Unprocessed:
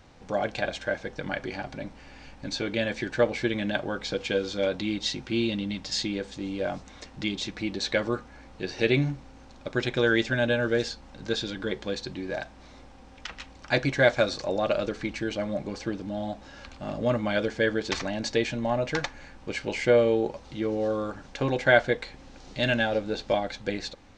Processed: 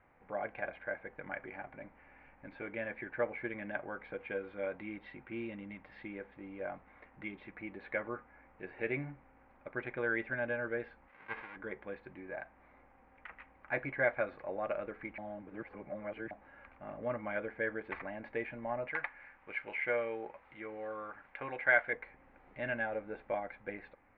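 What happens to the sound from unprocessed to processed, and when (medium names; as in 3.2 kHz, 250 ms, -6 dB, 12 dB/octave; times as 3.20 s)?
11.07–11.55 s: formants flattened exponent 0.1
15.18–16.31 s: reverse
18.88–21.93 s: tilt shelf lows -7 dB, about 900 Hz
whole clip: elliptic low-pass 2.2 kHz, stop band 80 dB; bass shelf 460 Hz -10.5 dB; trim -6.5 dB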